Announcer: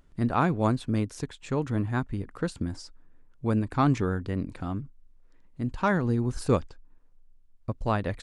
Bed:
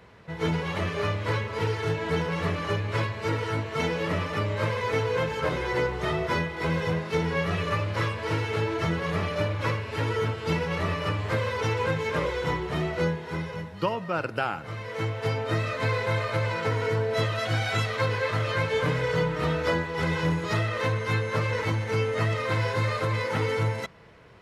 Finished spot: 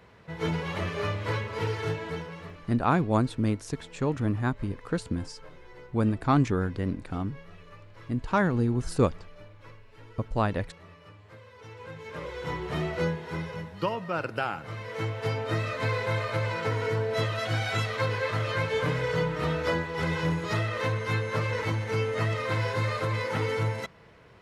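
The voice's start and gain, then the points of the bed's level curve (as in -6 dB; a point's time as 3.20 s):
2.50 s, +0.5 dB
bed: 1.89 s -2.5 dB
2.82 s -23 dB
11.49 s -23 dB
12.71 s -2 dB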